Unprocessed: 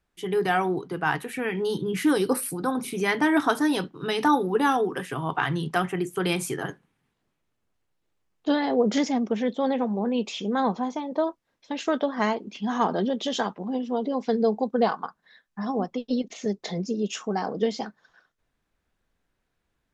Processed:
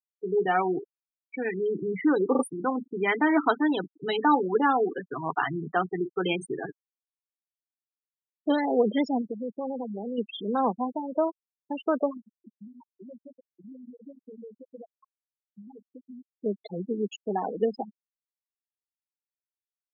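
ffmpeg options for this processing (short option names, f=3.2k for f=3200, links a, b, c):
-filter_complex "[0:a]asettb=1/sr,asplit=3[a][b][c];[a]atrim=end=9.214[d];[b]atrim=start=9.21:end=10.18,asetpts=PTS-STARTPTS,afade=t=in:d=0.004:c=qsin,afade=t=out:st=0.966:d=0.004:c=qsin,acompressor=threshold=-30dB:ratio=2.5:attack=3.2:release=140:knee=1:detection=peak[e];[c]atrim=start=10.176[f];[d][e]acrossfade=d=0.004:c1=hsin:c2=qsin[g];[g][f]acrossfade=d=0.004:c1=qsin:c2=hsin,asettb=1/sr,asplit=3[h][i][j];[h]atrim=end=12.174[k];[i]atrim=start=12.17:end=16.37,asetpts=PTS-STARTPTS,afade=t=in:d=0.004:c=qsin,afade=t=out:st=4.196:d=0.004:c=qsin,acompressor=threshold=-37dB:ratio=10:attack=3.2:release=140:knee=1:detection=peak[l];[j]atrim=start=16.366[m];[k][l]acrossfade=d=0.004:c1=hsin:c2=qsin[n];[n][m]acrossfade=d=0.004:c1=qsin:c2=hsin,asplit=6[o][p][q][r][s][t];[o]atrim=end=0.85,asetpts=PTS-STARTPTS,afade=t=out:st=0.846:d=0.004:c=hsin[u];[p]atrim=start=0.85:end=1.29,asetpts=PTS-STARTPTS,volume=0[v];[q]atrim=start=1.29:end=2.352,asetpts=PTS-STARTPTS,afade=t=in:d=0.004:c=hsin[w];[r]atrim=start=2.308:end=2.352[x];[s]atrim=start=2.308:end=2.352[y];[t]atrim=start=2.428[z];[u][v][w]concat=n=3:v=0:a=1[aa];[aa][x]acrossfade=d=0.004:c1=hsin:c2=hsin[ab];[ab][y]acrossfade=d=0.004:c1=hsin:c2=hsin[ac];[ac][z]acrossfade=d=0.004:c1=hsin:c2=hsin,afftfilt=real='re*gte(hypot(re,im),0.0794)':imag='im*gte(hypot(re,im),0.0794)':win_size=1024:overlap=0.75,highpass=230,bandreject=f=1.6k:w=21"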